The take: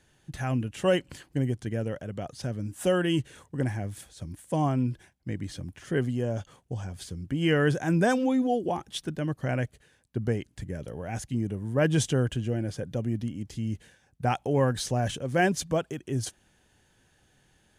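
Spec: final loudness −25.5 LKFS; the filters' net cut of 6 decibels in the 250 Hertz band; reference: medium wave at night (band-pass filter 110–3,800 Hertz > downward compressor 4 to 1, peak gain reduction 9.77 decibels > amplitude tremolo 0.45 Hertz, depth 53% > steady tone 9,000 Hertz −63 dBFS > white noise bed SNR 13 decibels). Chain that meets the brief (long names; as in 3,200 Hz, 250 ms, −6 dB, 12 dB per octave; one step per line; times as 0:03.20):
band-pass filter 110–3,800 Hz
parametric band 250 Hz −8 dB
downward compressor 4 to 1, threshold −31 dBFS
amplitude tremolo 0.45 Hz, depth 53%
steady tone 9,000 Hz −63 dBFS
white noise bed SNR 13 dB
level +14.5 dB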